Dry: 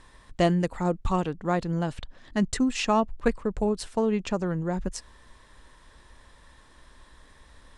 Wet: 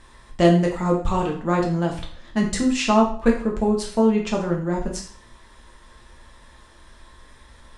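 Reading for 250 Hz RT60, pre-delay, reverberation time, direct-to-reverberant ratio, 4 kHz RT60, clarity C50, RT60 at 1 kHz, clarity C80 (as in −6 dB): 0.50 s, 4 ms, 0.50 s, −1.0 dB, 0.45 s, 7.0 dB, 0.50 s, 11.5 dB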